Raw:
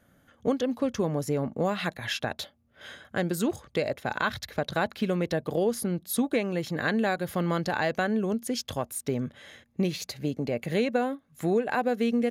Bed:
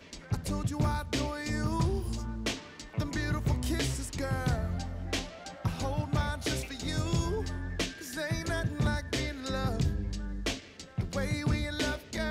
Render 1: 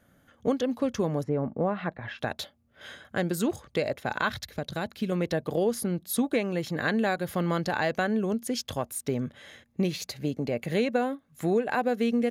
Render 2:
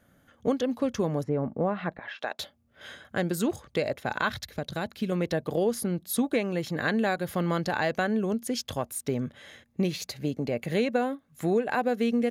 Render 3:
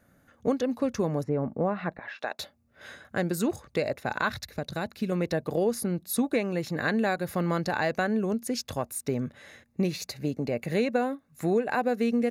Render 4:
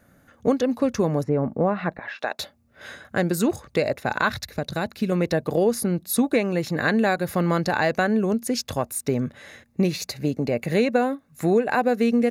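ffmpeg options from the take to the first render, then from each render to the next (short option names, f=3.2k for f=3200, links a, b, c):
-filter_complex "[0:a]asplit=3[a][b][c];[a]afade=t=out:st=1.22:d=0.02[d];[b]lowpass=1.5k,afade=t=in:st=1.22:d=0.02,afade=t=out:st=2.18:d=0.02[e];[c]afade=t=in:st=2.18:d=0.02[f];[d][e][f]amix=inputs=3:normalize=0,asettb=1/sr,asplit=3[g][h][i];[g]atrim=end=4.444[j];[h]atrim=start=4.44:end=5.12,asetpts=PTS-STARTPTS,afade=t=in:d=0.004:c=qsin,afade=t=out:st=0.676:d=0.004:c=qsin,equalizer=f=1.1k:w=0.4:g=-7.5[k];[i]atrim=start=5.116[l];[j][k]acrossfade=d=0.004:c1=hsin:c2=qsin[m];[m][l]acrossfade=d=0.004:c1=qsin:c2=hsin"
-filter_complex "[0:a]asettb=1/sr,asplit=3[a][b][c];[a]atrim=end=1.994[d];[b]atrim=start=1.99:end=2.39,asetpts=PTS-STARTPTS,afade=t=in:d=0.004:c=qsin,afade=t=out:st=0.396:d=0.004:c=qsin,highpass=480,lowpass=6.9k[e];[c]atrim=start=2.386[f];[d][e]acrossfade=d=0.004:c1=hsin:c2=qsin[g];[g][f]acrossfade=d=0.004:c1=qsin:c2=hsin"
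-af "bandreject=f=3.2k:w=5.3"
-af "volume=5.5dB"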